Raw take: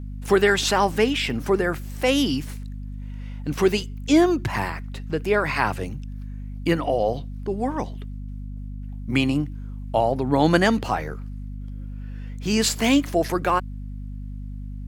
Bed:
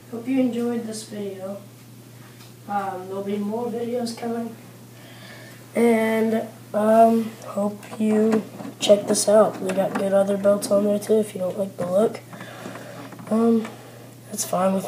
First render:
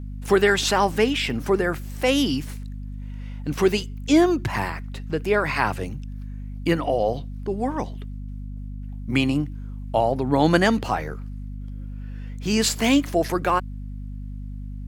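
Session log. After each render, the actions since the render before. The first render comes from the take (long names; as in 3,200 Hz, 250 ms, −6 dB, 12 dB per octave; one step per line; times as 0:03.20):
no processing that can be heard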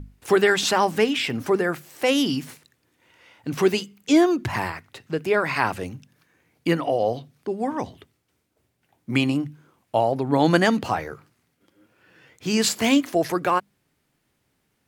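mains-hum notches 50/100/150/200/250 Hz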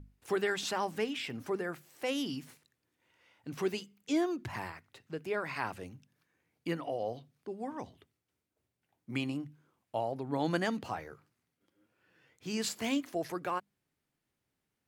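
level −13.5 dB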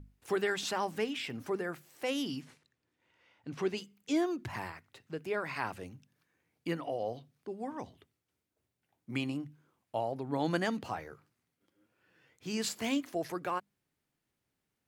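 0:02.41–0:03.77: high-frequency loss of the air 63 metres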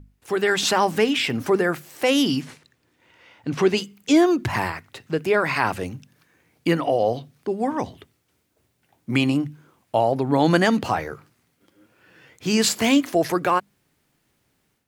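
automatic gain control gain up to 11 dB
in parallel at −3 dB: brickwall limiter −15.5 dBFS, peak gain reduction 8.5 dB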